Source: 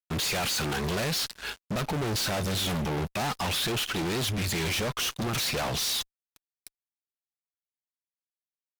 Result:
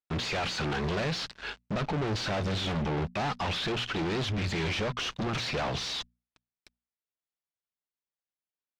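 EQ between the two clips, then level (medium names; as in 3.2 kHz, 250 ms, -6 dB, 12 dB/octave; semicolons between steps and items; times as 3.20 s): distance through air 150 m; hum notches 60/120/180/240 Hz; 0.0 dB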